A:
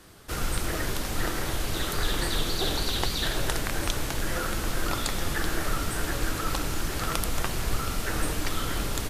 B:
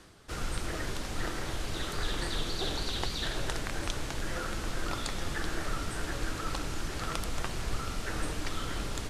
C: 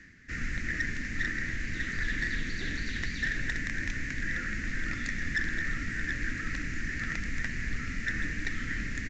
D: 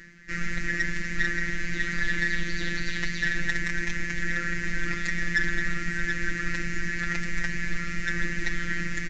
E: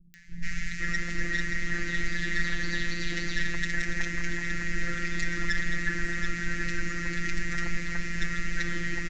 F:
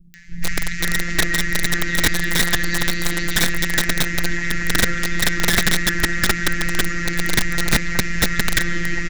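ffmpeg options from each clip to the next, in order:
-af "lowpass=8.5k,areverse,acompressor=mode=upward:threshold=-38dB:ratio=2.5,areverse,volume=-5.5dB"
-af "firequalizer=gain_entry='entry(150,0);entry(250,6);entry(360,-9);entry(840,-23);entry(1300,-9);entry(1800,15);entry(3200,-10);entry(6100,-4)':delay=0.05:min_phase=1,aresample=16000,asoftclip=type=hard:threshold=-24dB,aresample=44100"
-af "afftfilt=real='hypot(re,im)*cos(PI*b)':imag='0':win_size=1024:overlap=0.75,volume=8.5dB"
-filter_complex "[0:a]acrossover=split=1200[a][b];[b]acompressor=mode=upward:threshold=-51dB:ratio=2.5[c];[a][c]amix=inputs=2:normalize=0,acrossover=split=190|1700[d][e][f];[f]adelay=140[g];[e]adelay=510[h];[d][h][g]amix=inputs=3:normalize=0"
-af "aeval=exprs='(mod(9.44*val(0)+1,2)-1)/9.44':c=same,volume=8.5dB"

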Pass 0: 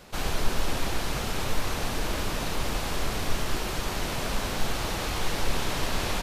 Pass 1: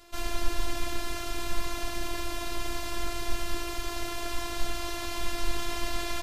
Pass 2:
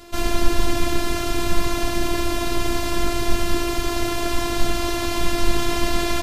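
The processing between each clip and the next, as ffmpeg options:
-af "bandreject=f=50.19:t=h:w=4,bandreject=f=100.38:t=h:w=4,bandreject=f=150.57:t=h:w=4,bandreject=f=200.76:t=h:w=4,bandreject=f=250.95:t=h:w=4,bandreject=f=301.14:t=h:w=4,bandreject=f=351.33:t=h:w=4,bandreject=f=401.52:t=h:w=4,bandreject=f=451.71:t=h:w=4,bandreject=f=501.9:t=h:w=4,bandreject=f=552.09:t=h:w=4,bandreject=f=602.28:t=h:w=4,bandreject=f=652.47:t=h:w=4,bandreject=f=702.66:t=h:w=4,bandreject=f=752.85:t=h:w=4,bandreject=f=803.04:t=h:w=4,bandreject=f=853.23:t=h:w=4,bandreject=f=903.42:t=h:w=4,bandreject=f=953.61:t=h:w=4,bandreject=f=1.0038k:t=h:w=4,bandreject=f=1.05399k:t=h:w=4,bandreject=f=1.10418k:t=h:w=4,bandreject=f=1.15437k:t=h:w=4,bandreject=f=1.20456k:t=h:w=4,bandreject=f=1.25475k:t=h:w=4,bandreject=f=1.30494k:t=h:w=4,bandreject=f=1.35513k:t=h:w=4,bandreject=f=1.40532k:t=h:w=4,bandreject=f=1.45551k:t=h:w=4,bandreject=f=1.5057k:t=h:w=4,bandreject=f=1.55589k:t=h:w=4,bandreject=f=1.60608k:t=h:w=4,bandreject=f=1.65627k:t=h:w=4,bandreject=f=1.70646k:t=h:w=4,bandreject=f=1.75665k:t=h:w=4,bandreject=f=1.80684k:t=h:w=4,afftfilt=real='hypot(re,im)*cos(PI*b)':imag='0':win_size=512:overlap=0.75"
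-af "equalizer=f=170:t=o:w=2.7:g=9,volume=8.5dB"

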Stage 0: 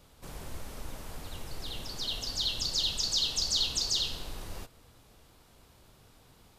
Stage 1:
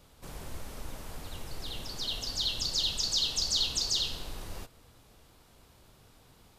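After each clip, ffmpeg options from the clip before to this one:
-af anull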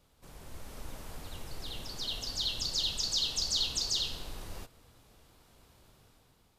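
-af "dynaudnorm=f=130:g=9:m=6.5dB,volume=-8.5dB"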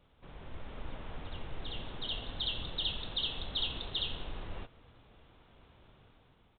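-af "aresample=8000,aresample=44100,volume=1.5dB"

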